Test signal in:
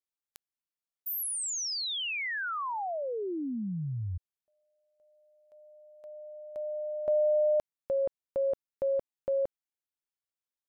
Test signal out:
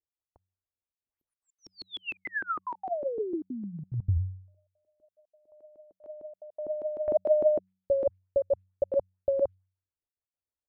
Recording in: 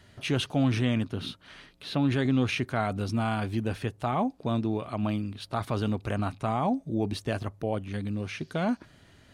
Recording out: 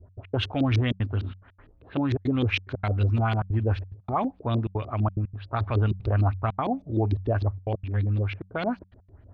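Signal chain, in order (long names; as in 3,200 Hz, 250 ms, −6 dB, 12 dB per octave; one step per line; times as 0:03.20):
low-pass that shuts in the quiet parts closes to 710 Hz, open at −23 dBFS
low shelf with overshoot 120 Hz +7.5 dB, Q 3
gate pattern "x.x.xxxxxxx.xxx" 180 BPM −60 dB
auto-filter low-pass saw up 6.6 Hz 300–4,800 Hz
hum removal 93.8 Hz, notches 2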